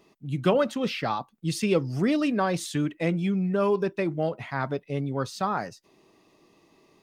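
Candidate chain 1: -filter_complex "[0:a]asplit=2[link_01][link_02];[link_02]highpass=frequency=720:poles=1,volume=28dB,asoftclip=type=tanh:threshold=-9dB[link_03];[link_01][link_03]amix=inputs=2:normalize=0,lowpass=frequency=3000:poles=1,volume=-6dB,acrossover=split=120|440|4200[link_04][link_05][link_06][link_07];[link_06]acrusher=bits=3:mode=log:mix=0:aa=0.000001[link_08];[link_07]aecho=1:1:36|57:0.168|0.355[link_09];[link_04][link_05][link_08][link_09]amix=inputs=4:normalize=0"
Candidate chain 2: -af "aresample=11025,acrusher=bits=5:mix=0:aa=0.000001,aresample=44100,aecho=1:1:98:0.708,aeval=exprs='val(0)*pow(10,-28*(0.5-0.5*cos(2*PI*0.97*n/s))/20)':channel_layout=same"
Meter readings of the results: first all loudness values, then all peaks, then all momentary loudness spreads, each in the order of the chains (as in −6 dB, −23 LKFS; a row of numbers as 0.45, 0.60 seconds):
−18.5, −30.0 LKFS; −4.5, −13.0 dBFS; 4, 19 LU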